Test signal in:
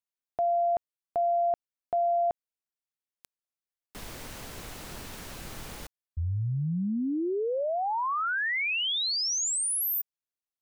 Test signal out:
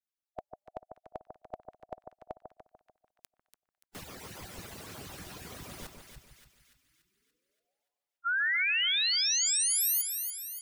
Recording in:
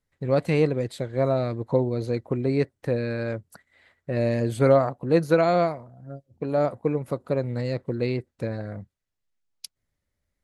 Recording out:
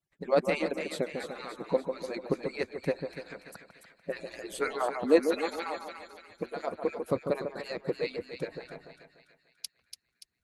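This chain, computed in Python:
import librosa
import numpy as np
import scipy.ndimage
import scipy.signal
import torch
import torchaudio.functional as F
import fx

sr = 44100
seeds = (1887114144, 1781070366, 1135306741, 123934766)

y = fx.hpss_only(x, sr, part='percussive')
y = fx.echo_split(y, sr, split_hz=1500.0, low_ms=147, high_ms=288, feedback_pct=52, wet_db=-7)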